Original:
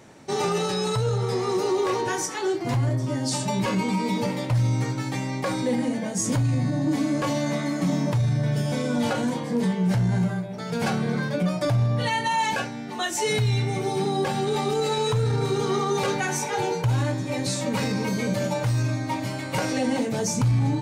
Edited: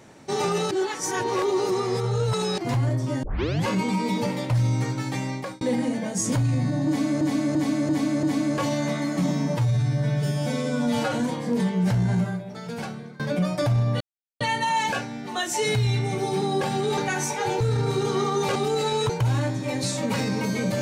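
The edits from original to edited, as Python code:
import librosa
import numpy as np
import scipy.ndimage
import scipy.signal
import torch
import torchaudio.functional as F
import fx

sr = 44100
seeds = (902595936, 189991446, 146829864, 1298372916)

y = fx.edit(x, sr, fx.reverse_span(start_s=0.71, length_s=1.87),
    fx.tape_start(start_s=3.23, length_s=0.44),
    fx.fade_out_span(start_s=5.3, length_s=0.31),
    fx.repeat(start_s=6.87, length_s=0.34, count=5),
    fx.stretch_span(start_s=7.95, length_s=1.21, factor=1.5),
    fx.fade_out_to(start_s=10.24, length_s=0.99, floor_db=-24.0),
    fx.insert_silence(at_s=12.04, length_s=0.4),
    fx.swap(start_s=14.61, length_s=0.54, other_s=16.1, other_length_s=0.63), tone=tone)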